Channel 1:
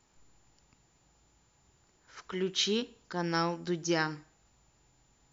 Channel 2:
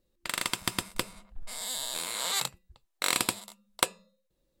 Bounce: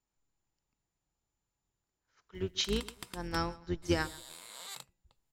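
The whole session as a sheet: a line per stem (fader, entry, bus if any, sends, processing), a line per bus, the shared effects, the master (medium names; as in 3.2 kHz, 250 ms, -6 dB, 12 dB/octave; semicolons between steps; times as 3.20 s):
+1.0 dB, 0.00 s, no send, echo send -20.5 dB, octave divider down 2 oct, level -1 dB; upward expansion 2.5:1, over -39 dBFS
-15.5 dB, 2.35 s, no send, no echo send, upward compressor, threshold -33 dBFS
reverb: none
echo: feedback delay 137 ms, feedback 30%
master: none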